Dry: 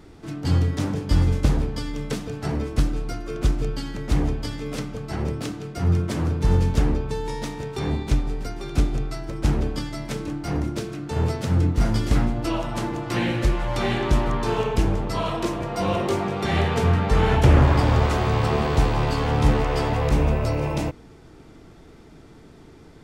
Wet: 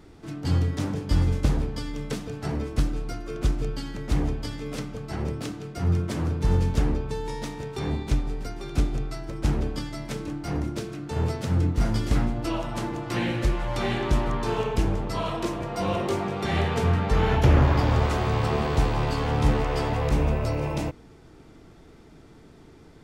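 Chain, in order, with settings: 17.12–17.91 s: peaking EQ 8.5 kHz -11.5 dB 0.2 oct; trim -3 dB

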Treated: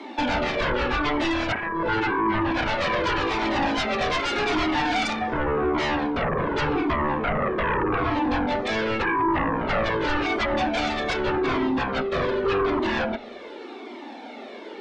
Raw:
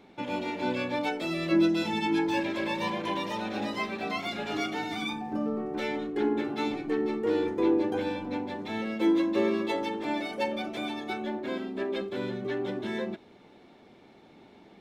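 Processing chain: low-pass that closes with the level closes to 410 Hz, closed at -22 dBFS; steep high-pass 230 Hz 72 dB/octave; in parallel at -2.5 dB: compression, threshold -37 dBFS, peak gain reduction 14.5 dB; on the sum: sine folder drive 14 dB, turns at -15.5 dBFS; distance through air 70 m; on a send at -23 dB: reverberation RT60 0.75 s, pre-delay 47 ms; on the sum: Shepard-style flanger falling 0.86 Hz

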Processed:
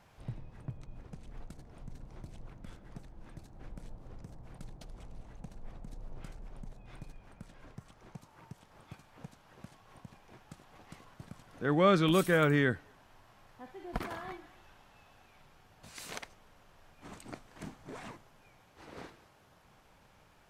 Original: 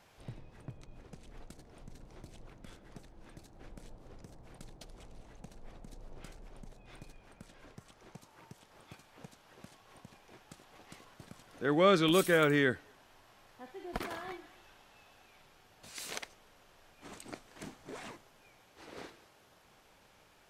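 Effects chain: FFT filter 150 Hz 0 dB, 390 Hz -7 dB, 1 kHz -4 dB, 3.7 kHz -9 dB; trim +5.5 dB

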